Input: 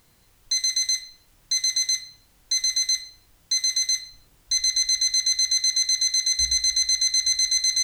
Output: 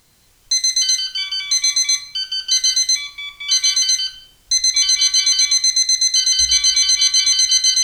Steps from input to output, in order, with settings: ever faster or slower copies 131 ms, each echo -5 st, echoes 2, each echo -6 dB; peaking EQ 5.8 kHz +5 dB 2.1 oct; trim +2 dB

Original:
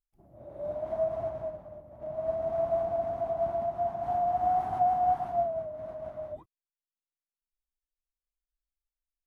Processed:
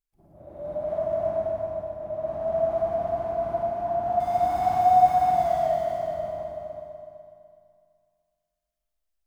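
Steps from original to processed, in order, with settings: 4.20–5.75 s: companding laws mixed up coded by mu; multi-head delay 124 ms, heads first and third, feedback 42%, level -7.5 dB; Schroeder reverb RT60 2.1 s, DRR -2 dB

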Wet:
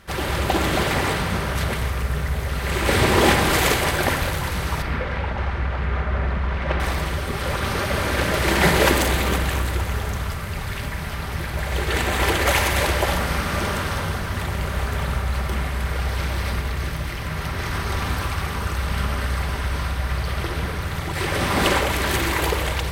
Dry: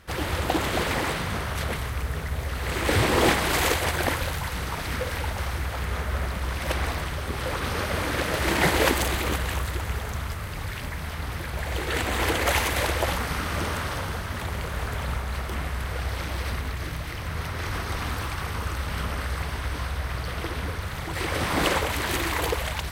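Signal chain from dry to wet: 4.82–6.80 s: low-pass 2.5 kHz 12 dB/octave; simulated room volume 3100 m³, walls mixed, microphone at 1.2 m; trim +3 dB

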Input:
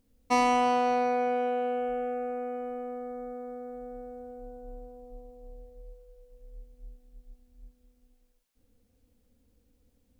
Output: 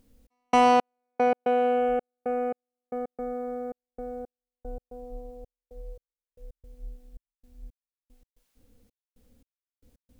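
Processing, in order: trance gate "xx..xx...x.xx" 113 bpm -60 dB; trim +6.5 dB

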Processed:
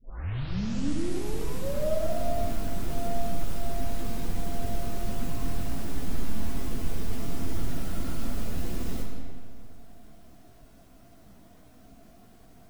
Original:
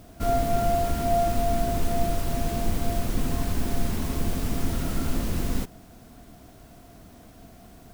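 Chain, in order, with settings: tape start-up on the opening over 1.31 s; plain phase-vocoder stretch 1.6×; algorithmic reverb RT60 2 s, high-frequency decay 0.75×, pre-delay 30 ms, DRR 2 dB; trim -5 dB

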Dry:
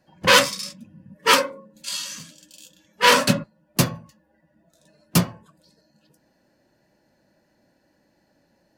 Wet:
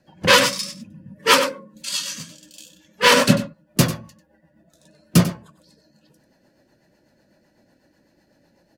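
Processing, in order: rotary cabinet horn 8 Hz; on a send: delay 95 ms -13.5 dB; on the sum: loudness maximiser +7 dB; trim -1 dB

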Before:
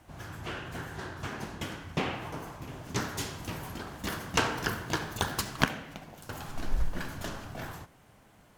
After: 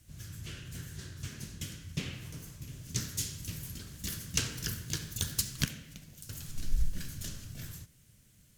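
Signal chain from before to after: FFT filter 140 Hz 0 dB, 300 Hz -11 dB, 570 Hz -16 dB, 800 Hz -27 dB, 1.7 kHz -11 dB, 6.7 kHz +5 dB

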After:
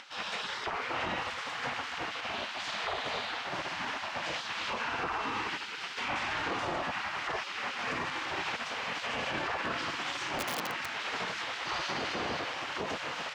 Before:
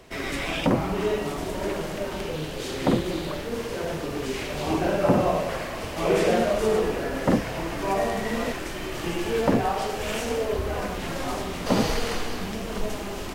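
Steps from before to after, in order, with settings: upward compressor, threshold -38 dBFS; spectral gate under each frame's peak -15 dB weak; peak limiter -27.5 dBFS, peak gain reduction 9.5 dB; distance through air 160 m; 10.38–10.92 s: integer overflow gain 31 dB; high-pass 220 Hz 6 dB/octave; trim +5.5 dB

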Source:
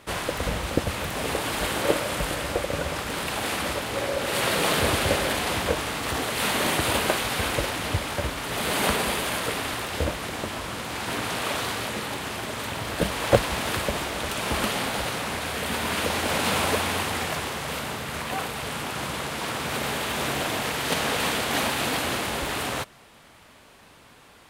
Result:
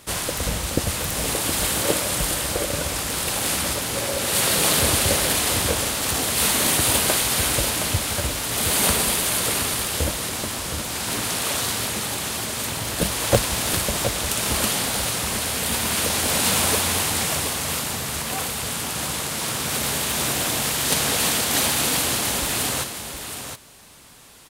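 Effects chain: tone controls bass +4 dB, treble +13 dB; on a send: delay 718 ms -8 dB; on the sum: trim -1 dB

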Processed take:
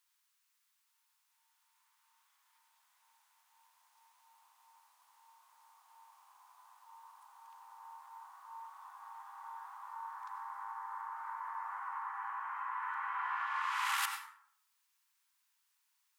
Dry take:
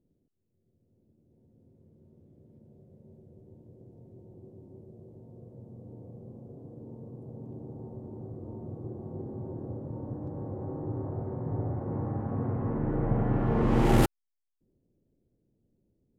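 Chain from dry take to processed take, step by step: steep high-pass 970 Hz 72 dB/octave; compression 2.5:1, threshold -59 dBFS, peak gain reduction 19 dB; on a send: reverberation RT60 0.65 s, pre-delay 78 ms, DRR 5.5 dB; on the sum: trim +17 dB

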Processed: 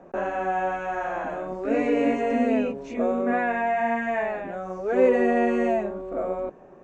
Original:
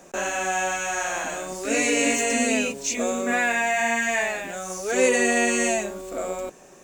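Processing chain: low-pass 1.1 kHz 12 dB/octave; trim +2 dB

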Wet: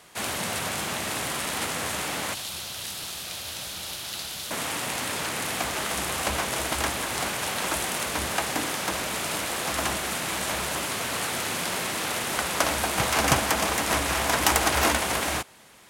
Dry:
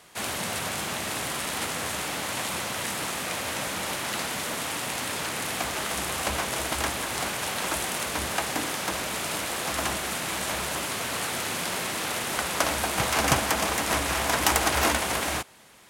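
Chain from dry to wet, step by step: 2.34–4.51 s: graphic EQ 125/250/500/1000/2000/4000/8000 Hz -5/-12/-8/-9/-10/+4/-5 dB; trim +1 dB

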